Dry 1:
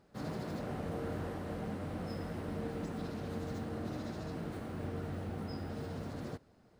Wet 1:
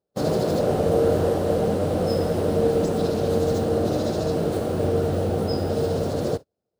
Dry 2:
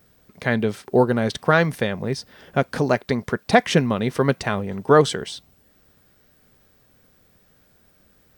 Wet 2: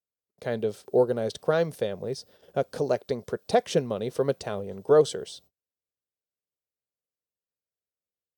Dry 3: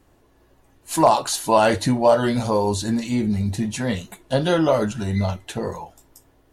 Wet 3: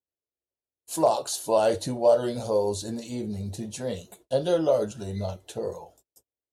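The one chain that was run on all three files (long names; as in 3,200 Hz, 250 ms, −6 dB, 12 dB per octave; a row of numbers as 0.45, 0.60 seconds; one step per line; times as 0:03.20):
graphic EQ with 10 bands 125 Hz −4 dB, 250 Hz −7 dB, 500 Hz +7 dB, 1,000 Hz −6 dB, 2,000 Hz −11 dB
noise gate −48 dBFS, range −35 dB
high-pass filter 78 Hz
normalise the peak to −9 dBFS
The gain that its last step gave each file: +19.5, −6.0, −5.0 decibels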